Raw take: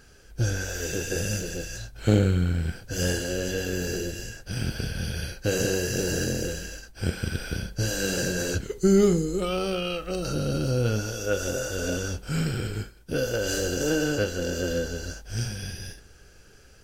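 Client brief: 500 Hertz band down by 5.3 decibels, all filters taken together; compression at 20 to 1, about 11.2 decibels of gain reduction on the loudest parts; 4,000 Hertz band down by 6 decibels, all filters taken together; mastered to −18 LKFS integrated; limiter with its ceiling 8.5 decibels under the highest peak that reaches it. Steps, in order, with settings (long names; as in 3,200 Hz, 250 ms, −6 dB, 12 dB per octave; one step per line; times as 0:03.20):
parametric band 500 Hz −6.5 dB
parametric band 4,000 Hz −8.5 dB
downward compressor 20 to 1, threshold −27 dBFS
level +18.5 dB
brickwall limiter −7.5 dBFS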